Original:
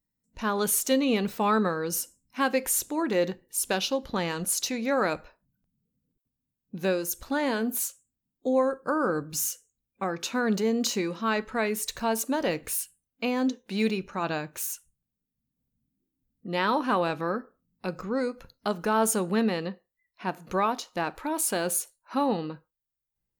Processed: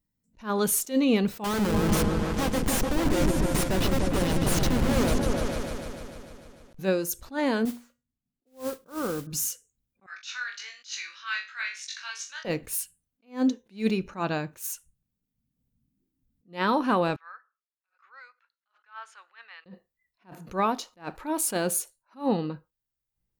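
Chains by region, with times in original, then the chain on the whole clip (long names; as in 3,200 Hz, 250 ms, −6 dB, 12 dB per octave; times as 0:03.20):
0:01.44–0:06.79: mu-law and A-law mismatch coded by mu + comparator with hysteresis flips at −27.5 dBFS + echo whose low-pass opens from repeat to repeat 149 ms, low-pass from 400 Hz, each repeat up 2 octaves, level 0 dB
0:07.65–0:09.27: low-pass filter 1,500 Hz + tuned comb filter 240 Hz, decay 0.32 s, mix 50% + noise that follows the level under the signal 11 dB
0:10.06–0:12.45: Chebyshev band-pass filter 1,500–6,100 Hz, order 3 + flutter between parallel walls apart 3.5 metres, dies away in 0.3 s
0:17.16–0:19.66: high-pass filter 1,400 Hz 24 dB per octave + head-to-tape spacing loss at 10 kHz 39 dB
whole clip: low-shelf EQ 280 Hz +6 dB; level that may rise only so fast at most 240 dB per second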